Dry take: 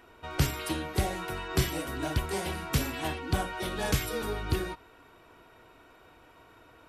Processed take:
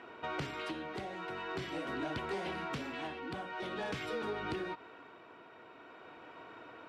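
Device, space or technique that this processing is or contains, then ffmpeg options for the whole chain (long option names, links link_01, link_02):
AM radio: -af "highpass=190,lowpass=3300,acompressor=threshold=-39dB:ratio=6,asoftclip=type=tanh:threshold=-33.5dB,tremolo=f=0.46:d=0.38,volume=5.5dB"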